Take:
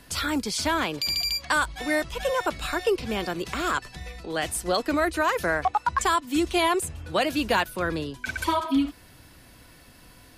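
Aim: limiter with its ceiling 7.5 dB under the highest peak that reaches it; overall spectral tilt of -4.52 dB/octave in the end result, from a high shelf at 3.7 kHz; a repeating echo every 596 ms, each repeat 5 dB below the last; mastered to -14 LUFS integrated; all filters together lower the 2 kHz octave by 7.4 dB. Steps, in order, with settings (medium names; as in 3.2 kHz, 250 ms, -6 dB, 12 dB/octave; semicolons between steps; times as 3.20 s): peaking EQ 2 kHz -8.5 dB; treble shelf 3.7 kHz -8.5 dB; peak limiter -22 dBFS; feedback delay 596 ms, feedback 56%, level -5 dB; trim +17 dB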